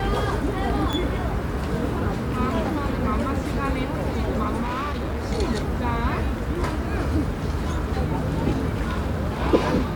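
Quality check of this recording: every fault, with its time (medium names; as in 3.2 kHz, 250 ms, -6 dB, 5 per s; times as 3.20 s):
0.93 s: pop -13 dBFS
4.62–5.26 s: clipped -23.5 dBFS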